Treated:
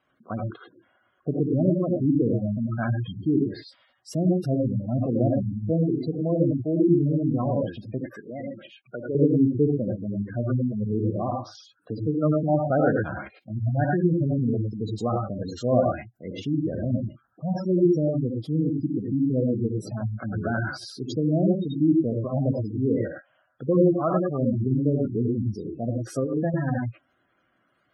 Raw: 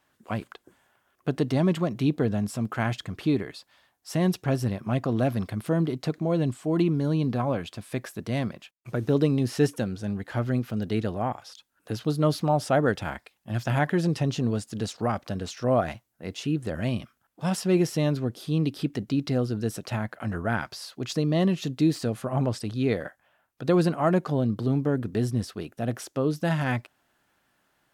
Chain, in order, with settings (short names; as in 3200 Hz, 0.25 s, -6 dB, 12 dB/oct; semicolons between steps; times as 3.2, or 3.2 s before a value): 23.8–24.4 low shelf 360 Hz -5 dB; reverb, pre-delay 3 ms, DRR 0 dB; spectral gate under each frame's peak -15 dB strong; 8.06–9.15 weighting filter A; 26.14–26.54 negative-ratio compressor -24 dBFS, ratio -0.5; notch comb 890 Hz